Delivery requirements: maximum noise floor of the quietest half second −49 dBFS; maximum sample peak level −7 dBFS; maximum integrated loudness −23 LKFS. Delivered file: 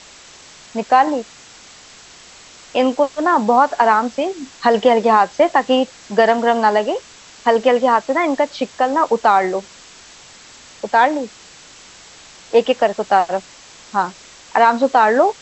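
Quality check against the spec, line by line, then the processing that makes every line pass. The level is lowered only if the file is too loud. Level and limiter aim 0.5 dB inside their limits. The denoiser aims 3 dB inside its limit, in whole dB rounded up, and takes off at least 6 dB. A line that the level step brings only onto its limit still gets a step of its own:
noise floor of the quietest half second −43 dBFS: out of spec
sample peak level −2.0 dBFS: out of spec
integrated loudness −16.5 LKFS: out of spec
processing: level −7 dB

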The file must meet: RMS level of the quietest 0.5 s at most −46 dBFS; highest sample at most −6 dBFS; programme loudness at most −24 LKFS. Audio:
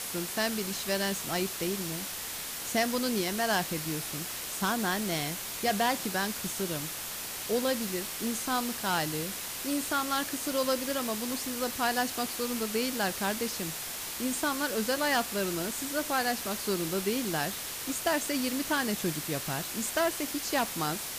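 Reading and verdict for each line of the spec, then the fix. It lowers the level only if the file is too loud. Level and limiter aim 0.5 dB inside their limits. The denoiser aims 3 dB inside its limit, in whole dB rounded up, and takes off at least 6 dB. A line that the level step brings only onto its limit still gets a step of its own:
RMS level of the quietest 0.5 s −38 dBFS: out of spec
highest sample −15.0 dBFS: in spec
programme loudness −30.5 LKFS: in spec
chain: broadband denoise 11 dB, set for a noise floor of −38 dBFS

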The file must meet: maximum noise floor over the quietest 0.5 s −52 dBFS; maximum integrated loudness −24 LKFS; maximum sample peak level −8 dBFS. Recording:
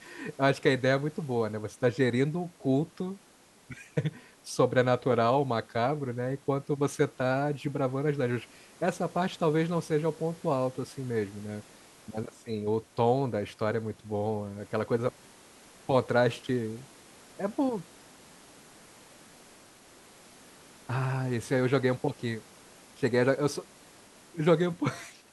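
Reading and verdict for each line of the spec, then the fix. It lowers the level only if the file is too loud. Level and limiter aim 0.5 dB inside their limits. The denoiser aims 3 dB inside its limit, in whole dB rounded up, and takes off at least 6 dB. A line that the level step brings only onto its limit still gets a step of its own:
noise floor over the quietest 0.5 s −59 dBFS: in spec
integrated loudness −29.5 LKFS: in spec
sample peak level −9.0 dBFS: in spec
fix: no processing needed

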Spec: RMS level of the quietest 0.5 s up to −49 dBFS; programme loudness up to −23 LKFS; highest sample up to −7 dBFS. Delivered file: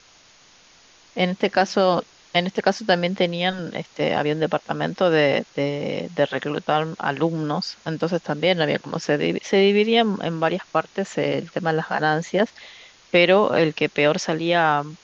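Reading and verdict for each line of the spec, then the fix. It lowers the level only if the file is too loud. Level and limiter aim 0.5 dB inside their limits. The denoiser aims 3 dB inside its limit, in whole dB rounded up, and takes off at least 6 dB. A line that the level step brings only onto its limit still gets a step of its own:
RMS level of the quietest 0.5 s −53 dBFS: in spec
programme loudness −21.5 LKFS: out of spec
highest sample −2.5 dBFS: out of spec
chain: level −2 dB
brickwall limiter −7.5 dBFS

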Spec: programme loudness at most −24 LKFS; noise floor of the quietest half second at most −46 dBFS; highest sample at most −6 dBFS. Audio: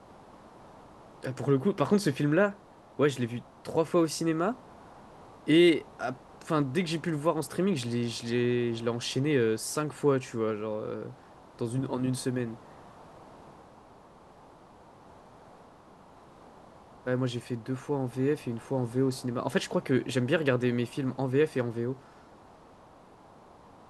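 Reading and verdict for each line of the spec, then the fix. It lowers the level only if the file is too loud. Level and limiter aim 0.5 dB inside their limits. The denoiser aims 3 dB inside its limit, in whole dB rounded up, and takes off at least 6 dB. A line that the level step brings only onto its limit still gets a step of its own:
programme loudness −29.5 LKFS: in spec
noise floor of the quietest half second −54 dBFS: in spec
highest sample −11.5 dBFS: in spec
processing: no processing needed

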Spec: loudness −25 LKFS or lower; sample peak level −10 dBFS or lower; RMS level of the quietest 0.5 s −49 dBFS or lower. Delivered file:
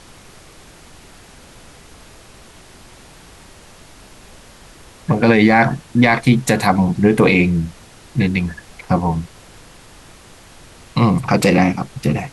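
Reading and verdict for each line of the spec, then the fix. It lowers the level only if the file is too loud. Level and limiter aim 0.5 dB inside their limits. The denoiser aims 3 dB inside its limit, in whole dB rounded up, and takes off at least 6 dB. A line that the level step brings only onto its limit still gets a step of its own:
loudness −16.0 LKFS: out of spec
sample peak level −1.5 dBFS: out of spec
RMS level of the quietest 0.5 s −43 dBFS: out of spec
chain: level −9.5 dB

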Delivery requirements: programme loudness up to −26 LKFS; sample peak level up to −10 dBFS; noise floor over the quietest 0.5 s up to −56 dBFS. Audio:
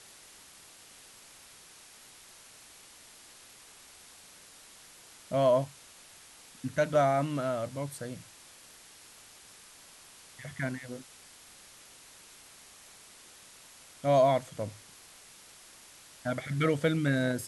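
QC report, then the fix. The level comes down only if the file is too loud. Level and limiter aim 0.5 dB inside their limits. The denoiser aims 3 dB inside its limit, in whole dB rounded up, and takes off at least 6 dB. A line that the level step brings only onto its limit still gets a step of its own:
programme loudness −30.0 LKFS: in spec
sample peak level −14.5 dBFS: in spec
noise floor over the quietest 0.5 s −54 dBFS: out of spec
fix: broadband denoise 6 dB, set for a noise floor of −54 dBFS

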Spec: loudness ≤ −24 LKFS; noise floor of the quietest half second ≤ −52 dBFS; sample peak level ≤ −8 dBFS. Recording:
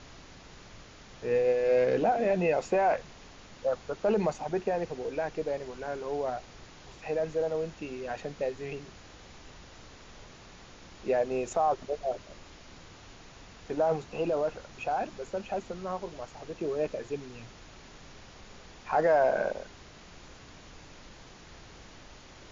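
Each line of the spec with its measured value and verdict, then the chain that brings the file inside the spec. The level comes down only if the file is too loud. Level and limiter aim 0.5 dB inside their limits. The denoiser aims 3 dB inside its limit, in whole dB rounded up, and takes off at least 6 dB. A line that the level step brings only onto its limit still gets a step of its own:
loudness −30.5 LKFS: in spec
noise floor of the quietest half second −51 dBFS: out of spec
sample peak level −15.5 dBFS: in spec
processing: broadband denoise 6 dB, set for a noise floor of −51 dBFS

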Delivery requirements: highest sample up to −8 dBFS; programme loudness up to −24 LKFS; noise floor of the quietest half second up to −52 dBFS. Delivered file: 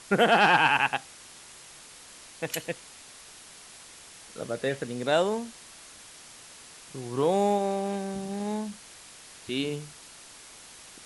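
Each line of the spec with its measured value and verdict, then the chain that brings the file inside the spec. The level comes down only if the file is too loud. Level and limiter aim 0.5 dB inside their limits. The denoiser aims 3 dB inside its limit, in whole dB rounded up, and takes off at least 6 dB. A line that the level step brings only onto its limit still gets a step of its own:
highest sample −8.5 dBFS: in spec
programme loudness −27.0 LKFS: in spec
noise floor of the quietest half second −49 dBFS: out of spec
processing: broadband denoise 6 dB, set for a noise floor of −49 dBFS

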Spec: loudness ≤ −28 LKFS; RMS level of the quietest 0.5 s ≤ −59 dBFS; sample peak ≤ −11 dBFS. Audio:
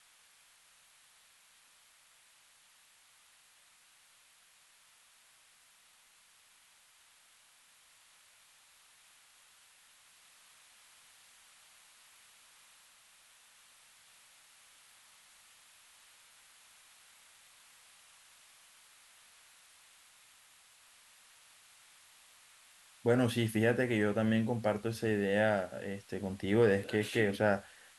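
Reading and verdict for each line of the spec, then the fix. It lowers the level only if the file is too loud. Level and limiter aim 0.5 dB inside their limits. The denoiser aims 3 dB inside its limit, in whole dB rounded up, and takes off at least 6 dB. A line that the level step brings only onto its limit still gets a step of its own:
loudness −31.5 LKFS: in spec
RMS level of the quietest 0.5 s −65 dBFS: in spec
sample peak −15.0 dBFS: in spec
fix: no processing needed

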